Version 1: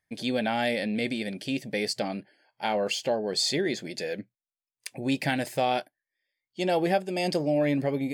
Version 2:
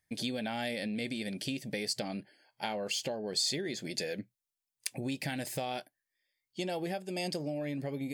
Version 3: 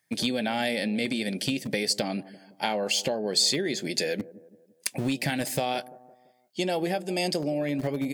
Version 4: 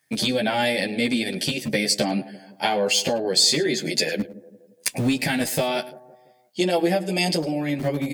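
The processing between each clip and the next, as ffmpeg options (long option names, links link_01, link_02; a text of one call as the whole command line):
ffmpeg -i in.wav -af "lowshelf=frequency=240:gain=6.5,acompressor=threshold=-30dB:ratio=6,highshelf=frequency=3300:gain=9,volume=-3.5dB" out.wav
ffmpeg -i in.wav -filter_complex "[0:a]acrossover=split=120|1100[link_01][link_02][link_03];[link_01]acrusher=bits=7:mix=0:aa=0.000001[link_04];[link_02]aecho=1:1:170|340|510|680:0.141|0.0664|0.0312|0.0147[link_05];[link_03]asoftclip=type=hard:threshold=-21.5dB[link_06];[link_04][link_05][link_06]amix=inputs=3:normalize=0,volume=8dB" out.wav
ffmpeg -i in.wav -filter_complex "[0:a]aecho=1:1:106:0.106,asplit=2[link_01][link_02];[link_02]adelay=11.1,afreqshift=-0.48[link_03];[link_01][link_03]amix=inputs=2:normalize=1,volume=8.5dB" out.wav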